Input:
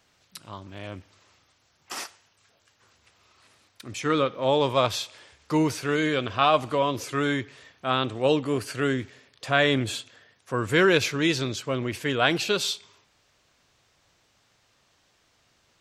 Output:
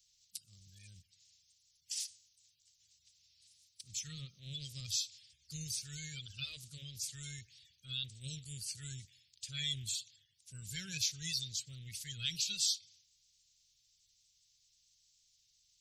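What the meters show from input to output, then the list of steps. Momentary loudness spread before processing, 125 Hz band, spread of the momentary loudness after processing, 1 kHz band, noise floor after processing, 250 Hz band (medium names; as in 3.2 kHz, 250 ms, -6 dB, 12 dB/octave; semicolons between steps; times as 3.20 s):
18 LU, -14.5 dB, 18 LU, under -40 dB, -74 dBFS, -27.0 dB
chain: coarse spectral quantiser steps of 30 dB; Chebyshev band-stop 160–5000 Hz, order 2; amplifier tone stack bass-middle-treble 10-0-10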